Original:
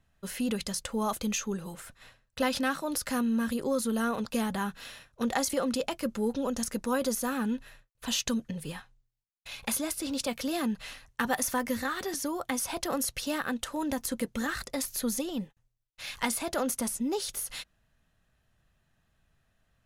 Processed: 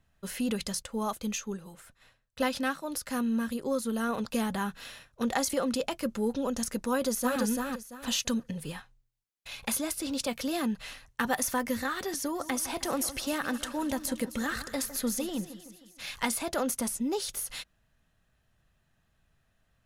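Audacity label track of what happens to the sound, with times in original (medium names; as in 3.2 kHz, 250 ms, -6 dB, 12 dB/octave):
0.820000	4.090000	upward expansion, over -39 dBFS
6.900000	7.410000	echo throw 340 ms, feedback 25%, level -2.5 dB
12.090000	16.080000	two-band feedback delay split 2.1 kHz, lows 156 ms, highs 262 ms, level -13.5 dB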